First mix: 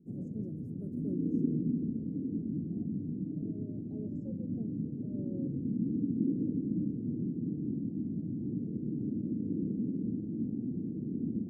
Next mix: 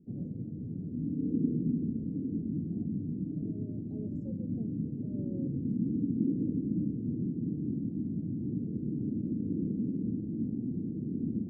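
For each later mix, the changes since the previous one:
first voice: add resonant band-pass 2,000 Hz, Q 2.7
master: add low-shelf EQ 74 Hz +11 dB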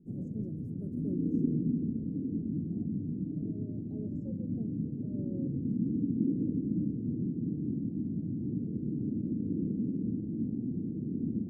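first voice: remove resonant band-pass 2,000 Hz, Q 2.7

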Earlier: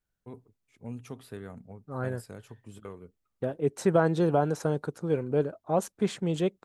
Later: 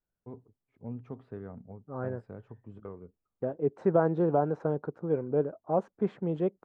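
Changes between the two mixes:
second voice: add low-shelf EQ 140 Hz −8 dB
master: add low-pass filter 1,100 Hz 12 dB per octave

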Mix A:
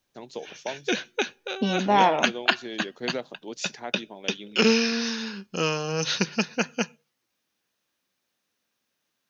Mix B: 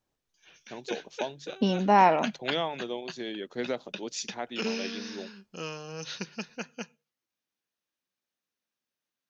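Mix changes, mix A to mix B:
first voice: entry +0.55 s
background −12.0 dB

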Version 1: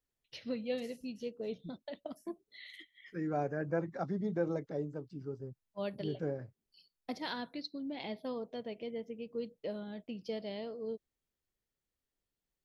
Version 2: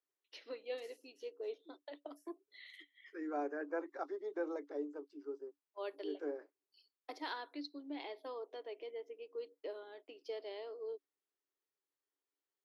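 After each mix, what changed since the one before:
master: add Chebyshev high-pass with heavy ripple 280 Hz, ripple 6 dB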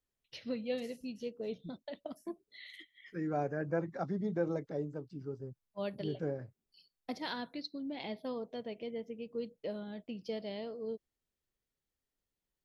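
master: remove Chebyshev high-pass with heavy ripple 280 Hz, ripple 6 dB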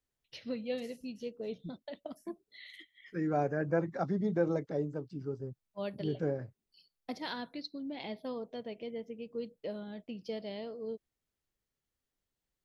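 second voice +3.5 dB

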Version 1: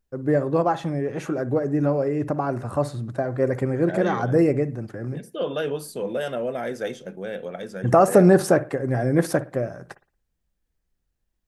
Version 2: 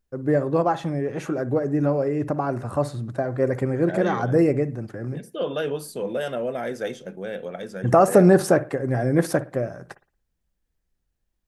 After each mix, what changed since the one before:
nothing changed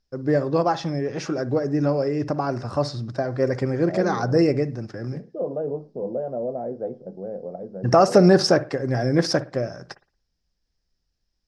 second voice: add Chebyshev low-pass filter 740 Hz, order 3
master: add low-pass with resonance 5,200 Hz, resonance Q 7.5

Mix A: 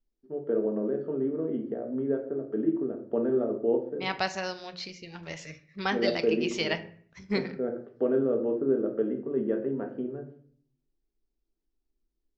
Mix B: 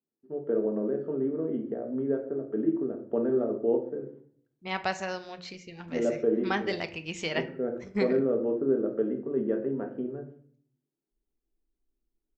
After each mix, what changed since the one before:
second voice: entry +0.65 s
master: remove low-pass with resonance 5,200 Hz, resonance Q 2.1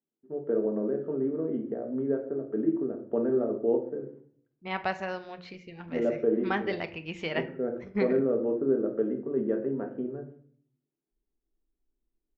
master: add low-pass filter 2,900 Hz 12 dB per octave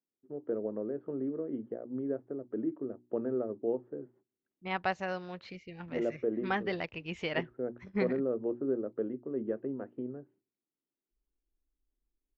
second voice: remove mains-hum notches 60/120/180 Hz
reverb: off

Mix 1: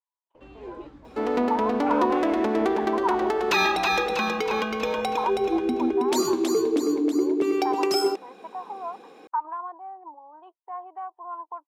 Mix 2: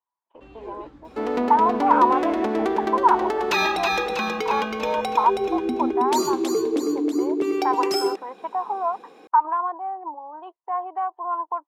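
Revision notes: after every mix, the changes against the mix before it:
speech +9.5 dB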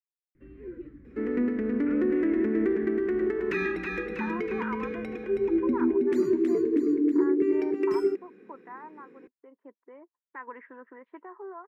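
speech: entry +2.70 s
master: add drawn EQ curve 380 Hz 0 dB, 790 Hz −27 dB, 1,900 Hz −1 dB, 3,500 Hz −24 dB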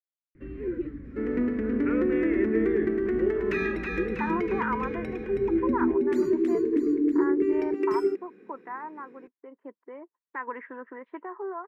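speech +6.5 dB
first sound +11.0 dB
reverb: off

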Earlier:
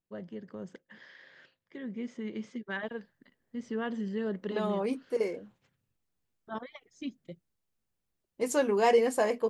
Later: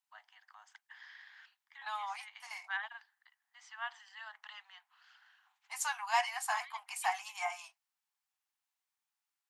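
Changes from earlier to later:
second voice: entry −2.70 s
master: add Butterworth high-pass 750 Hz 96 dB per octave

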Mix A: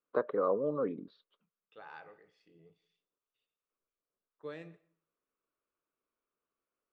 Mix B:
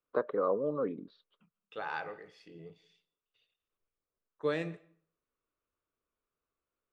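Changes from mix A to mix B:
second voice +12.0 dB
master: add high-shelf EQ 7,000 Hz +6 dB

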